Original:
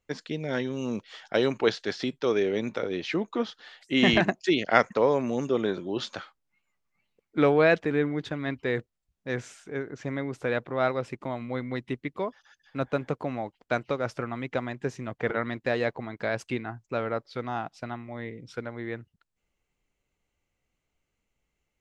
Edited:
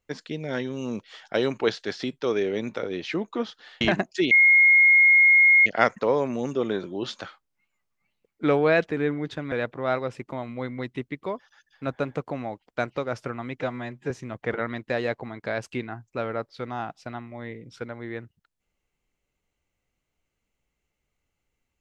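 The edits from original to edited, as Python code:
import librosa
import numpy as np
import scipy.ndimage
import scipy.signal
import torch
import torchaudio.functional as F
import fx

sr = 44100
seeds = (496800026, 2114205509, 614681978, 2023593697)

y = fx.edit(x, sr, fx.cut(start_s=3.81, length_s=0.29),
    fx.insert_tone(at_s=4.6, length_s=1.35, hz=2150.0, db=-12.5),
    fx.cut(start_s=8.46, length_s=1.99),
    fx.stretch_span(start_s=14.54, length_s=0.33, factor=1.5), tone=tone)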